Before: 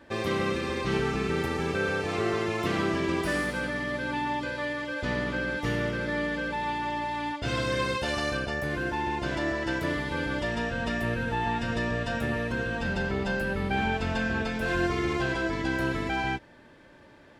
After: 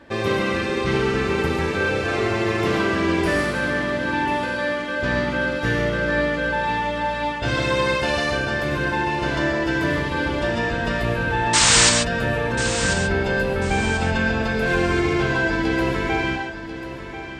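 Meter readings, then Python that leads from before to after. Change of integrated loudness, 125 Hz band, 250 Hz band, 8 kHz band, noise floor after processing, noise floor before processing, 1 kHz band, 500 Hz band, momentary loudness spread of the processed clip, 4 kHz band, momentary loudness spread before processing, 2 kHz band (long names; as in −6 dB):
+8.0 dB, +7.0 dB, +6.5 dB, +21.5 dB, −32 dBFS, −53 dBFS, +7.0 dB, +8.0 dB, 4 LU, +11.5 dB, 3 LU, +8.0 dB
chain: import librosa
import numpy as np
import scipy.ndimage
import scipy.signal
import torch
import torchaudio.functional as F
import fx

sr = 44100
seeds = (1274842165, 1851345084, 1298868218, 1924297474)

y = fx.high_shelf(x, sr, hz=10000.0, db=-7.5)
y = fx.spec_paint(y, sr, seeds[0], shape='noise', start_s=11.53, length_s=0.37, low_hz=780.0, high_hz=8900.0, level_db=-22.0)
y = fx.echo_feedback(y, sr, ms=1041, feedback_pct=31, wet_db=-11.5)
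y = fx.rev_gated(y, sr, seeds[1], gate_ms=160, shape='rising', drr_db=3.5)
y = y * librosa.db_to_amplitude(5.5)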